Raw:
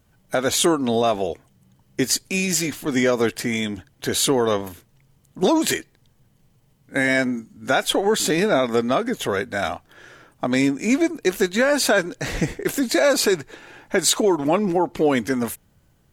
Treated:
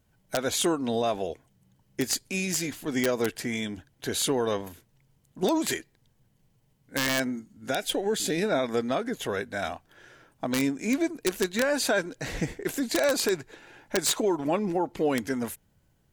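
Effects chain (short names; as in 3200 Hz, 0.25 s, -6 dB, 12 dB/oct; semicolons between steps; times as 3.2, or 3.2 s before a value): notch 1200 Hz, Q 14; wrapped overs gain 8.5 dB; 7.7–8.43 bell 1100 Hz -10 dB 0.78 oct; gain -7 dB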